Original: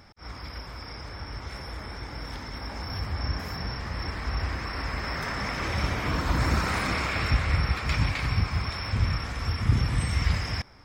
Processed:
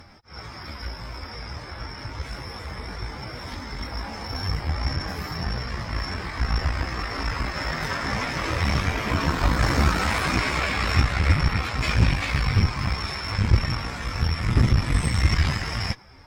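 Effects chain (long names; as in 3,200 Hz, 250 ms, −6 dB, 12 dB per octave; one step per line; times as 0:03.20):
time stretch by phase vocoder 1.5×
harmonic generator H 6 −18 dB, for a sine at −12.5 dBFS
level +6 dB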